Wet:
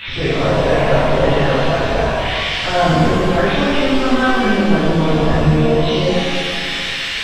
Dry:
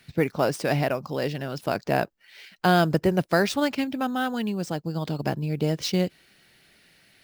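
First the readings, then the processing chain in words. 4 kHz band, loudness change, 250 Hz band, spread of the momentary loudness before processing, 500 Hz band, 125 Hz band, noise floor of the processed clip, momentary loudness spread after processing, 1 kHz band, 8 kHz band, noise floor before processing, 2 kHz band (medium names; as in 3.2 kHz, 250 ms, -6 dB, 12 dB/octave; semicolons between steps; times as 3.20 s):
+14.5 dB, +10.0 dB, +9.5 dB, 8 LU, +11.0 dB, +10.5 dB, -22 dBFS, 4 LU, +10.0 dB, +6.5 dB, -60 dBFS, +12.0 dB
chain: zero-crossing glitches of -22.5 dBFS; in parallel at +1.5 dB: compressor with a negative ratio -26 dBFS, ratio -0.5; on the sum: peak limiter -14.5 dBFS, peak gain reduction 8.5 dB; LPC vocoder at 8 kHz pitch kept; pitch-shifted reverb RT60 2.2 s, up +7 st, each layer -8 dB, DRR -12 dB; trim -1.5 dB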